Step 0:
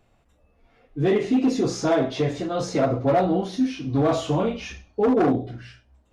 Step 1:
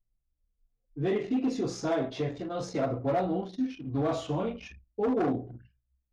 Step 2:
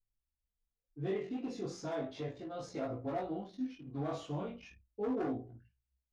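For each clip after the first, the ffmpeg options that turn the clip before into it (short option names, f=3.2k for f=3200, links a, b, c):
-af "anlmdn=3.98,volume=-8dB"
-af "flanger=delay=18.5:depth=2.3:speed=0.36,volume=-6dB"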